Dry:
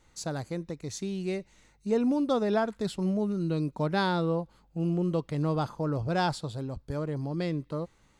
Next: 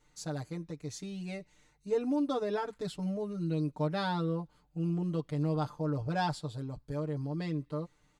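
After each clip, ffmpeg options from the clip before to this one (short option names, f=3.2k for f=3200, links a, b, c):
-af "aecho=1:1:6.7:0.99,volume=-8dB"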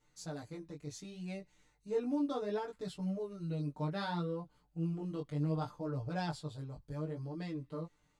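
-af "flanger=delay=15.5:depth=5.6:speed=0.67,volume=-2dB"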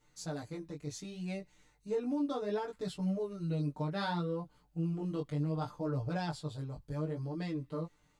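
-af "alimiter=level_in=5.5dB:limit=-24dB:level=0:latency=1:release=221,volume=-5.5dB,volume=3.5dB"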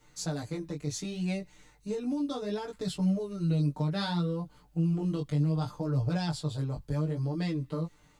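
-filter_complex "[0:a]acrossover=split=210|3000[a][b][c];[b]acompressor=threshold=-44dB:ratio=4[d];[a][d][c]amix=inputs=3:normalize=0,volume=8.5dB"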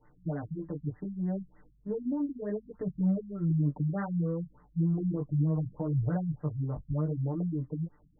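-af "afftfilt=real='re*lt(b*sr/1024,240*pow(2100/240,0.5+0.5*sin(2*PI*3.3*pts/sr)))':imag='im*lt(b*sr/1024,240*pow(2100/240,0.5+0.5*sin(2*PI*3.3*pts/sr)))':win_size=1024:overlap=0.75"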